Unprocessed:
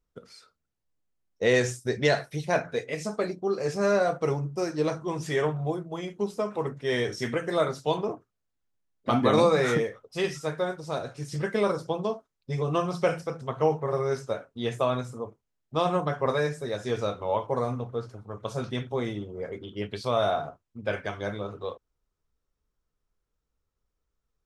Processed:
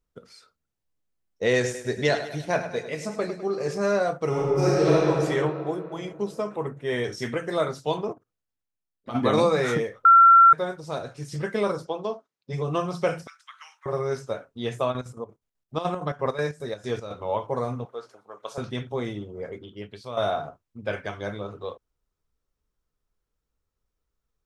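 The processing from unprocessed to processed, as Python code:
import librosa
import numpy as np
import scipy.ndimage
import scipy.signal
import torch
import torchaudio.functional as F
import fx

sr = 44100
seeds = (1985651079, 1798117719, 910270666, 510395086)

y = fx.echo_feedback(x, sr, ms=102, feedback_pct=51, wet_db=-11.0, at=(1.54, 3.78))
y = fx.reverb_throw(y, sr, start_s=4.28, length_s=0.67, rt60_s=2.9, drr_db=-8.5)
y = fx.brickwall_highpass(y, sr, low_hz=150.0, at=(5.49, 5.96))
y = fx.peak_eq(y, sr, hz=4900.0, db=-14.5, octaves=0.58, at=(6.55, 7.04))
y = fx.level_steps(y, sr, step_db=17, at=(8.12, 9.14), fade=0.02)
y = fx.bandpass_edges(y, sr, low_hz=fx.line((11.85, 320.0), (12.52, 140.0)), high_hz=6600.0, at=(11.85, 12.52), fade=0.02)
y = fx.steep_highpass(y, sr, hz=1400.0, slope=36, at=(13.27, 13.86))
y = fx.chopper(y, sr, hz=fx.line((14.91, 9.7), (17.24, 3.3)), depth_pct=65, duty_pct=60, at=(14.91, 17.24), fade=0.02)
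y = fx.highpass(y, sr, hz=520.0, slope=12, at=(17.85, 18.58))
y = fx.edit(y, sr, fx.bleep(start_s=10.05, length_s=0.48, hz=1360.0, db=-9.5),
    fx.fade_out_to(start_s=19.51, length_s=0.66, curve='qua', floor_db=-9.0), tone=tone)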